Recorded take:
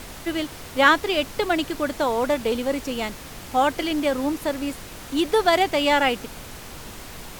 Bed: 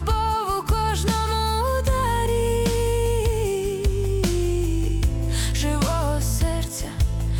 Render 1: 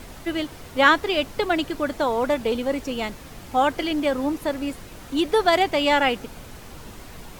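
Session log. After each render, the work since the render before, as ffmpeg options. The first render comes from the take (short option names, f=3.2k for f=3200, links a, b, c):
-af "afftdn=nr=6:nf=-40"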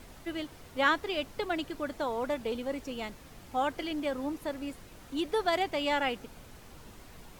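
-af "volume=-10dB"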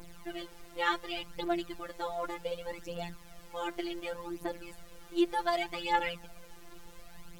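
-af "afftfilt=real='hypot(re,im)*cos(PI*b)':imag='0':win_size=1024:overlap=0.75,aphaser=in_gain=1:out_gain=1:delay=3:decay=0.56:speed=0.67:type=triangular"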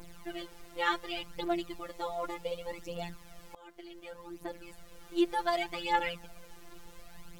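-filter_complex "[0:a]asettb=1/sr,asplit=3[a][b][c];[a]atrim=end=1.504[d];[b]atrim=start=1.5:end=3.02,asetpts=PTS-STARTPTS,afade=t=in:d=0.004:c=qsin,afade=t=out:st=1.516:d=0.004:c=qsin,bandreject=f=1.6k:w=5.8[e];[c]atrim=start=3.016[f];[d][e]acrossfade=d=0.004:c1=hsin:c2=qsin[g];[g][f]acrossfade=d=0.004:c1=qsin:c2=hsin,asplit=2[h][i];[h]atrim=end=3.55,asetpts=PTS-STARTPTS,afade=t=out:st=3.546:d=0.004:c=hsin:silence=0.0794328[j];[i]atrim=start=3.55,asetpts=PTS-STARTPTS,afade=t=in:d=1.56:silence=0.0794328[k];[j][k]concat=n=2:v=0:a=1"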